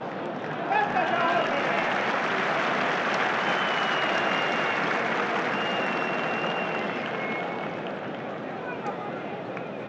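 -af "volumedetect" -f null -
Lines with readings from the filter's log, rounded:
mean_volume: -27.3 dB
max_volume: -12.7 dB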